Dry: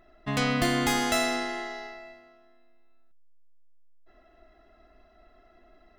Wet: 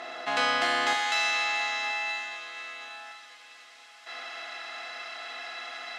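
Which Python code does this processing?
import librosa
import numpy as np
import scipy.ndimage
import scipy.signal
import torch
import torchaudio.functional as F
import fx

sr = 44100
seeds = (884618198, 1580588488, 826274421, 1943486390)

y = fx.bin_compress(x, sr, power=0.4)
y = scipy.signal.sosfilt(scipy.signal.butter(2, 4600.0, 'lowpass', fs=sr, output='sos'), y)
y = fx.rider(y, sr, range_db=3, speed_s=2.0)
y = fx.highpass(y, sr, hz=fx.steps((0.0, 650.0), (0.93, 1400.0)), slope=12)
y = fx.echo_feedback(y, sr, ms=975, feedback_pct=33, wet_db=-16.5)
y = fx.rev_fdn(y, sr, rt60_s=0.67, lf_ratio=0.85, hf_ratio=0.95, size_ms=12.0, drr_db=4.0)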